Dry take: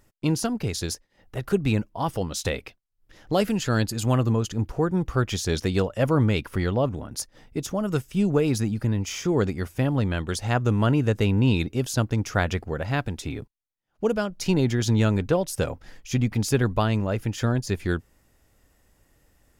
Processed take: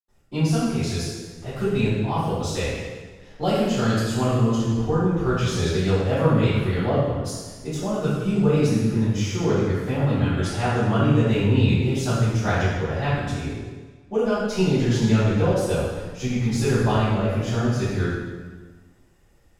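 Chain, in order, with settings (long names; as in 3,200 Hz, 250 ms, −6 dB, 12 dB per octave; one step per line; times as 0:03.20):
high-shelf EQ 11,000 Hz −12 dB
convolution reverb RT60 1.4 s, pre-delay 82 ms
level −5 dB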